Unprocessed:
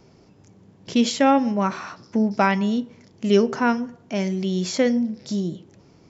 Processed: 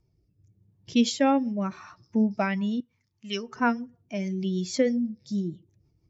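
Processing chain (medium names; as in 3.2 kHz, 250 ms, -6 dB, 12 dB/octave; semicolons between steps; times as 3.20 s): expander on every frequency bin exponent 1.5; 2.80–3.56 s: resonant low shelf 740 Hz -11.5 dB, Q 1.5; rotary cabinet horn 0.85 Hz, later 6.3 Hz, at 2.30 s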